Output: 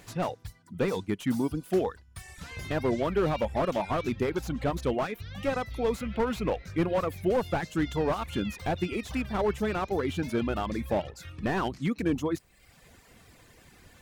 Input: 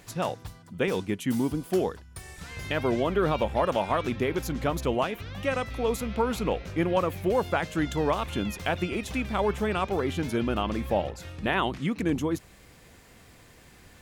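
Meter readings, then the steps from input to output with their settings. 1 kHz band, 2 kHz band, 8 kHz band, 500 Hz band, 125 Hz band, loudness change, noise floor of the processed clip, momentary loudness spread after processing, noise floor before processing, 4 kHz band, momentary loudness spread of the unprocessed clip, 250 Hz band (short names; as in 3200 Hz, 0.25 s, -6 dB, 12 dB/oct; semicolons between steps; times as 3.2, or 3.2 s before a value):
-3.0 dB, -4.0 dB, -4.5 dB, -1.5 dB, -1.5 dB, -2.0 dB, -58 dBFS, 6 LU, -53 dBFS, -4.5 dB, 6 LU, -1.0 dB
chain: reverb removal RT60 0.87 s; slew limiter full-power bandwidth 48 Hz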